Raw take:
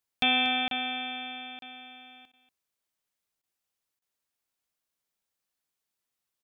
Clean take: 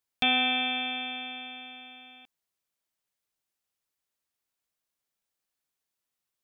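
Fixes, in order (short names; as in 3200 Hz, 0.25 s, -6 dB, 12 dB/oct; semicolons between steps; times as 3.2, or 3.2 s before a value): interpolate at 0.68/1.59/3.99, 32 ms; interpolate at 2.32/3.42, 13 ms; inverse comb 0.237 s -15 dB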